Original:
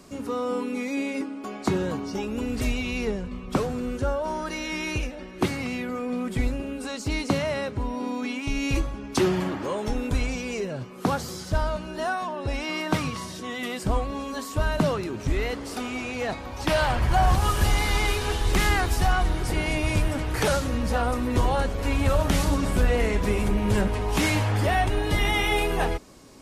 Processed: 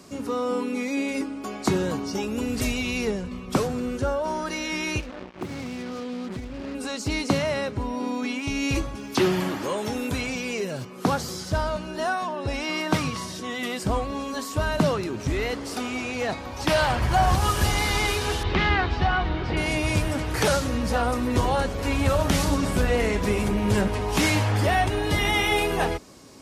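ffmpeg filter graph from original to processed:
ffmpeg -i in.wav -filter_complex "[0:a]asettb=1/sr,asplit=3[link_01][link_02][link_03];[link_01]atrim=end=1.084[link_04];[link_02]atrim=start=1.08:end=3.68,asetpts=PTS-STARTPTS,afade=type=in:duration=0.004:curve=qsin,afade=type=out:start_time=2.596:duration=0.004:curve=qsin,highshelf=frequency=6700:gain=6.5,aeval=exprs='val(0)+0.00224*(sin(2*PI*50*n/s)+sin(2*PI*2*50*n/s)/2+sin(2*PI*3*50*n/s)/3+sin(2*PI*4*50*n/s)/4+sin(2*PI*5*50*n/s)/5)':channel_layout=same[link_05];[link_03]atrim=start=3.676[link_06];[link_04][link_05]acrossfade=duration=0.004:curve1=hsin:curve2=qsin[link_07];[link_07][link_06]acrossfade=duration=0.004:curve1=qsin:curve2=hsin,asettb=1/sr,asplit=3[link_08][link_09][link_10];[link_08]atrim=end=5.004[link_11];[link_09]atrim=start=5:end=6.75,asetpts=PTS-STARTPTS,afade=type=in:duration=0.004:curve=qsin,afade=type=out:start_time=1.746:duration=0.004:curve=qsin,lowpass=frequency=1200:poles=1,acrusher=bits=5:mix=0:aa=0.5,acompressor=threshold=-31dB:ratio=4:attack=3.2:release=140:knee=1:detection=peak[link_12];[link_10]atrim=start=6.746[link_13];[link_11][link_12]acrossfade=duration=0.004:curve1=hsin:curve2=qsin[link_14];[link_14][link_13]acrossfade=duration=0.004:curve1=qsin:curve2=hsin,asettb=1/sr,asplit=3[link_15][link_16][link_17];[link_15]atrim=end=8.954[link_18];[link_16]atrim=start=8.95:end=10.85,asetpts=PTS-STARTPTS,afade=type=in:duration=0.004:curve=qsin,afade=type=out:start_time=1.896:duration=0.004:curve=qsin,acrossover=split=3800[link_19][link_20];[link_20]acompressor=threshold=-55dB:ratio=4:attack=1:release=60[link_21];[link_19][link_21]amix=inputs=2:normalize=0,highpass=85,aemphasis=mode=production:type=75fm[link_22];[link_17]atrim=start=10.846[link_23];[link_18][link_22]acrossfade=duration=0.004:curve1=hsin:curve2=qsin[link_24];[link_24][link_23]acrossfade=duration=0.004:curve1=qsin:curve2=hsin,asettb=1/sr,asplit=3[link_25][link_26][link_27];[link_25]atrim=end=18.434[link_28];[link_26]atrim=start=18.43:end=19.57,asetpts=PTS-STARTPTS,afade=type=in:duration=0.004:curve=qsin,afade=type=out:start_time=1.136:duration=0.004:curve=qsin,lowpass=frequency=3800:width=0.5412,lowpass=frequency=3800:width=1.3066,asplit=2[link_29][link_30];[link_30]adelay=13,volume=-13dB[link_31];[link_29][link_31]amix=inputs=2:normalize=0,atrim=end_sample=50274[link_32];[link_27]atrim=start=19.566[link_33];[link_28][link_32]acrossfade=duration=0.004:curve1=hsin:curve2=qsin[link_34];[link_34][link_33]acrossfade=duration=0.004:curve1=qsin:curve2=hsin,highpass=63,equalizer=frequency=5300:width=1.5:gain=2.5,volume=1.5dB" out.wav

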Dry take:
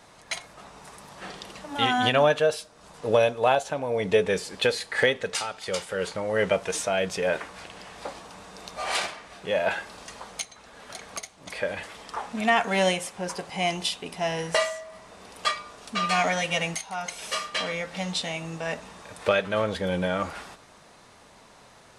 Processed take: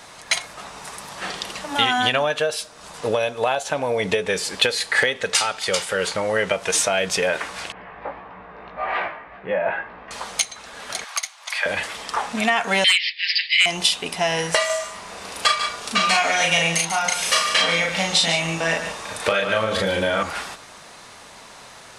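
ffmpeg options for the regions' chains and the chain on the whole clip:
ffmpeg -i in.wav -filter_complex "[0:a]asettb=1/sr,asplit=3[link_01][link_02][link_03];[link_01]atrim=end=7.724[link_04];[link_02]atrim=start=7.72:end=10.11,asetpts=PTS-STARTPTS,afade=type=in:duration=0.004:curve=qsin,afade=type=out:start_time=2.386:duration=0.004:curve=qsin,lowpass=frequency=2000:width=0.5412,lowpass=frequency=2000:width=1.3066,equalizer=frequency=1400:width_type=o:width=0.29:gain=-3.5,flanger=delay=15.5:depth=3:speed=1.7[link_05];[link_03]atrim=start=10.106[link_06];[link_04][link_05]acrossfade=duration=0.004:curve1=hsin:curve2=qsin[link_07];[link_07][link_06]acrossfade=duration=0.004:curve1=qsin:curve2=hsin,asettb=1/sr,asplit=3[link_08][link_09][link_10];[link_08]atrim=end=11.044[link_11];[link_09]atrim=start=11.04:end=11.66,asetpts=PTS-STARTPTS,afade=type=in:duration=0.004:curve=qsin,afade=type=out:start_time=0.616:duration=0.004:curve=qsin,highpass=frequency=830:width=0.5412,highpass=frequency=830:width=1.3066,equalizer=frequency=8500:width_type=o:width=0.63:gain=-4[link_12];[link_10]atrim=start=11.656[link_13];[link_11][link_12]acrossfade=duration=0.004:curve1=hsin:curve2=qsin[link_14];[link_14][link_13]acrossfade=duration=0.004:curve1=qsin:curve2=hsin,asettb=1/sr,asplit=3[link_15][link_16][link_17];[link_15]atrim=end=12.844[link_18];[link_16]atrim=start=12.84:end=13.66,asetpts=PTS-STARTPTS,afade=type=in:duration=0.004:curve=qsin,afade=type=out:start_time=0.816:duration=0.004:curve=qsin,agate=range=-33dB:threshold=-39dB:ratio=3:release=100:detection=peak,asuperpass=centerf=3000:order=20:qfactor=0.96,aeval=exprs='0.188*sin(PI/2*2.82*val(0)/0.188)':channel_layout=same[link_19];[link_17]atrim=start=13.656[link_20];[link_18][link_19]acrossfade=duration=0.004:curve1=hsin:curve2=qsin[link_21];[link_21][link_20]acrossfade=duration=0.004:curve1=qsin:curve2=hsin,asettb=1/sr,asplit=3[link_22][link_23][link_24];[link_22]atrim=end=14.664[link_25];[link_23]atrim=start=14.66:end=20.23,asetpts=PTS-STARTPTS,afade=type=in:duration=0.004:curve=qsin,afade=type=out:start_time=5.566:duration=0.004:curve=qsin,asplit=2[link_26][link_27];[link_27]adelay=36,volume=-2dB[link_28];[link_26][link_28]amix=inputs=2:normalize=0,atrim=end_sample=245637,aecho=1:1:143:0.299,atrim=end_sample=245637[link_29];[link_24]atrim=start=20.226[link_30];[link_25][link_29]acrossfade=duration=0.004:curve1=hsin:curve2=qsin[link_31];[link_31][link_30]acrossfade=duration=0.004:curve1=qsin:curve2=hsin,acompressor=threshold=-25dB:ratio=10,tiltshelf=frequency=790:gain=-4,volume=8.5dB" out.wav

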